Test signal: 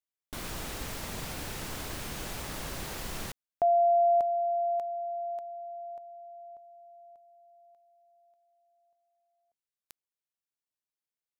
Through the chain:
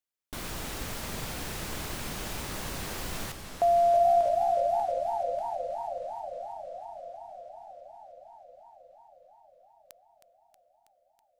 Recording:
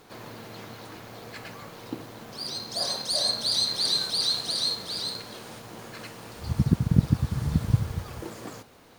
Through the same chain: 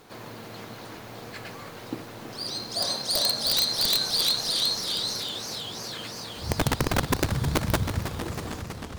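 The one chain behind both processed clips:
wrap-around overflow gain 16.5 dB
feedback echo with a swinging delay time 320 ms, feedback 78%, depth 171 cents, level −10 dB
level +1 dB

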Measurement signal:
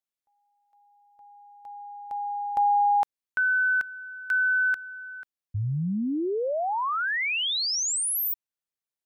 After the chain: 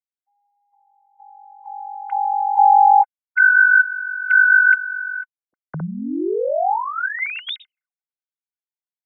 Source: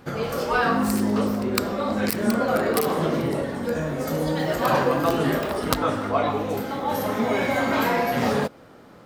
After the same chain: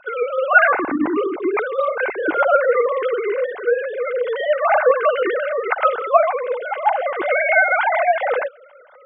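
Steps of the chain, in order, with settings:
three sine waves on the formant tracks
dynamic equaliser 820 Hz, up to +4 dB, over −35 dBFS, Q 5.3
hollow resonant body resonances 1,500/2,100 Hz, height 11 dB, ringing for 30 ms
level +3.5 dB

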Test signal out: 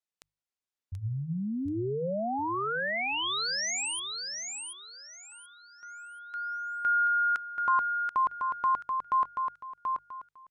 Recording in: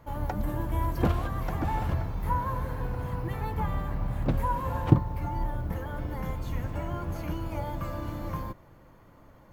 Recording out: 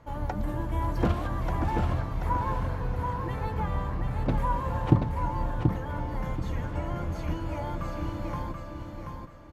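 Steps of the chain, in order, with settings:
low-pass filter 8,600 Hz 12 dB per octave
mains-hum notches 50/100/150 Hz
repeating echo 732 ms, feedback 28%, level −5 dB

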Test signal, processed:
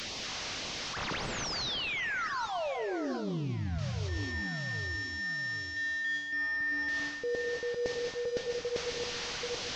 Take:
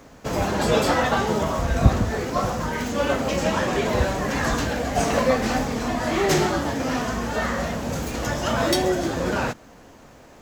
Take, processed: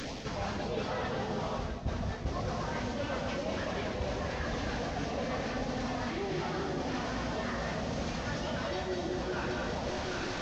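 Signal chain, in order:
linear delta modulator 32 kbit/s, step −31.5 dBFS
auto-filter notch sine 1.8 Hz 260–1,600 Hz
delay that swaps between a low-pass and a high-pass 392 ms, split 950 Hz, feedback 55%, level −5 dB
reverb whose tail is shaped and stops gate 260 ms rising, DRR 5.5 dB
reversed playback
downward compressor 12 to 1, threshold −31 dBFS
reversed playback

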